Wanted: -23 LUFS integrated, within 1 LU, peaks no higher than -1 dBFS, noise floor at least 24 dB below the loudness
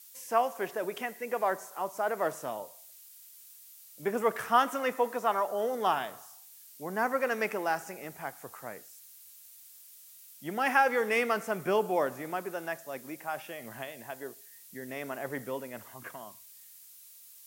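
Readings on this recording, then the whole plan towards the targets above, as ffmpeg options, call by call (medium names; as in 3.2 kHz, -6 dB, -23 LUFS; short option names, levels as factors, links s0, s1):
noise floor -53 dBFS; noise floor target -56 dBFS; loudness -31.5 LUFS; peak level -11.0 dBFS; loudness target -23.0 LUFS
-> -af "afftdn=nr=6:nf=-53"
-af "volume=2.66"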